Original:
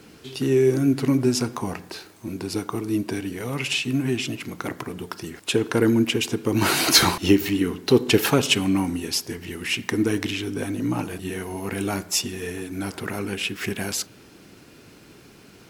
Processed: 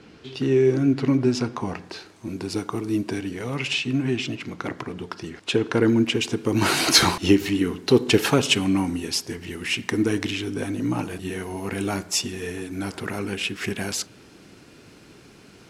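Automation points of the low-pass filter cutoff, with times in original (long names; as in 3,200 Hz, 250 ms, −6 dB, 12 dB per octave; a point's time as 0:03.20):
0:01.51 4,600 Hz
0:02.43 9,000 Hz
0:03.00 9,000 Hz
0:03.93 5,500 Hz
0:05.83 5,500 Hz
0:06.52 10,000 Hz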